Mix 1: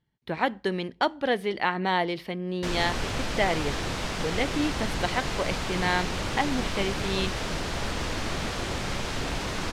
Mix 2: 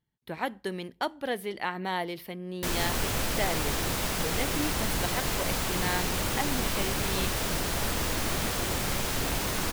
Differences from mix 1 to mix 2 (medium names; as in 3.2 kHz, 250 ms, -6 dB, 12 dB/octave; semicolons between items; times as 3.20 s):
speech -6.0 dB; master: remove low-pass 5.6 kHz 12 dB/octave